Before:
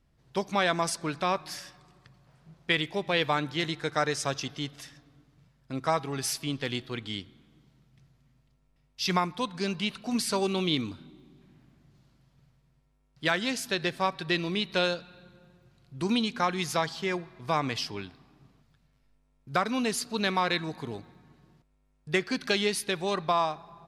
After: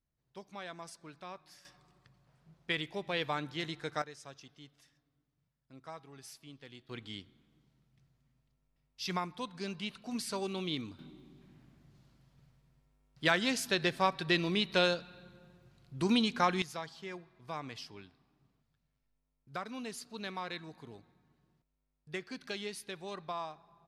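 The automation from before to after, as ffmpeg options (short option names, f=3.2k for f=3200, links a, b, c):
-af "asetnsamples=n=441:p=0,asendcmd='1.65 volume volume -8dB;4.02 volume volume -20dB;6.89 volume volume -9dB;10.99 volume volume -1.5dB;16.62 volume volume -13.5dB',volume=-19dB"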